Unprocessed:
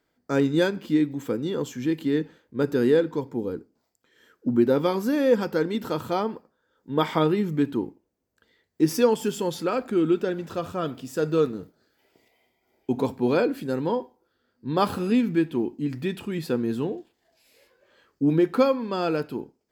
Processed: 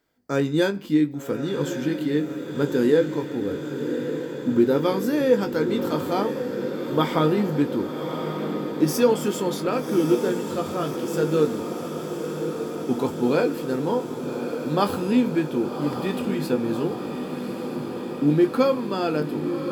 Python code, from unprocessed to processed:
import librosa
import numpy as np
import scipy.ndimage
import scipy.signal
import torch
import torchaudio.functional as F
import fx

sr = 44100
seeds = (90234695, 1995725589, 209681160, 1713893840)

p1 = fx.high_shelf(x, sr, hz=7300.0, db=4.0)
p2 = fx.doubler(p1, sr, ms=20.0, db=-9)
y = p2 + fx.echo_diffused(p2, sr, ms=1142, feedback_pct=75, wet_db=-8.0, dry=0)